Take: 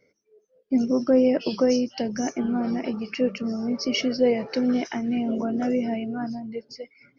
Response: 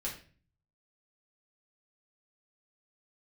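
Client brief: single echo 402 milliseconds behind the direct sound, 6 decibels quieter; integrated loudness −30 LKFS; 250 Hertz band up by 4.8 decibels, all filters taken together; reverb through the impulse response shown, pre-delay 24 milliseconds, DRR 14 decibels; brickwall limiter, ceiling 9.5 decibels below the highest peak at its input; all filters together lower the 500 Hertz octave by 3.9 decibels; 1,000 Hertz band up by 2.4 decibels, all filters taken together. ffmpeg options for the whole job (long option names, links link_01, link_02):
-filter_complex "[0:a]equalizer=frequency=250:width_type=o:gain=6,equalizer=frequency=500:width_type=o:gain=-7,equalizer=frequency=1000:width_type=o:gain=7.5,alimiter=limit=-17.5dB:level=0:latency=1,aecho=1:1:402:0.501,asplit=2[link_01][link_02];[1:a]atrim=start_sample=2205,adelay=24[link_03];[link_02][link_03]afir=irnorm=-1:irlink=0,volume=-15.5dB[link_04];[link_01][link_04]amix=inputs=2:normalize=0,volume=-6dB"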